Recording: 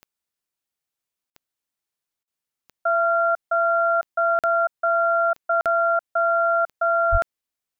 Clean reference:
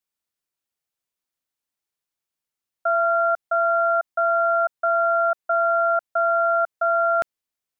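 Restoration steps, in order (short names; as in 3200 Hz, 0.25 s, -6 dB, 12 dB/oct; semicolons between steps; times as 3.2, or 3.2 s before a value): de-click; 7.11–7.23 HPF 140 Hz 24 dB/oct; interpolate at 1.3/2.23/4.39/5.61, 47 ms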